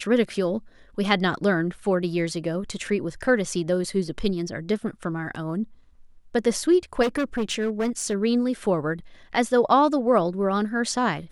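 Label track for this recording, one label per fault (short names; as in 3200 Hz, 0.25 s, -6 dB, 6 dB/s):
7.020000	8.150000	clipped -20 dBFS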